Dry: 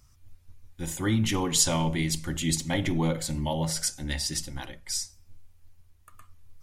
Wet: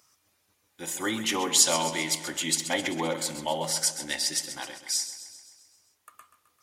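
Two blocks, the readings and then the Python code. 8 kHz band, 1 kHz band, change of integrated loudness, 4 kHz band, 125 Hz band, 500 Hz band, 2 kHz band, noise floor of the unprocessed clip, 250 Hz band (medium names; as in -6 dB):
+3.5 dB, +3.0 dB, +1.0 dB, +3.5 dB, -14.5 dB, +1.5 dB, +3.5 dB, -59 dBFS, -5.5 dB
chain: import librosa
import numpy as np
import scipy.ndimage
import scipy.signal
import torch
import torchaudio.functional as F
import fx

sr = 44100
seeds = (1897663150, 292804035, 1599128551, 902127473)

p1 = scipy.signal.sosfilt(scipy.signal.butter(2, 410.0, 'highpass', fs=sr, output='sos'), x)
p2 = p1 + fx.echo_feedback(p1, sr, ms=131, feedback_pct=59, wet_db=-12.0, dry=0)
y = F.gain(torch.from_numpy(p2), 3.0).numpy()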